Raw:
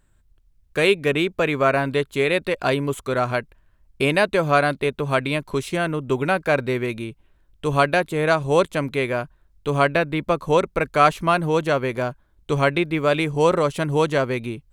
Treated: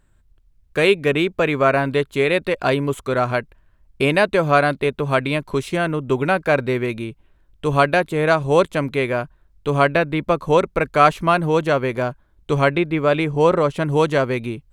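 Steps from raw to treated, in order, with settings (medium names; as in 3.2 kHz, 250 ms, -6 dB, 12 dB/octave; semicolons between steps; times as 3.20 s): treble shelf 4.1 kHz -4.5 dB, from 12.69 s -11 dB, from 13.86 s -3.5 dB; trim +2.5 dB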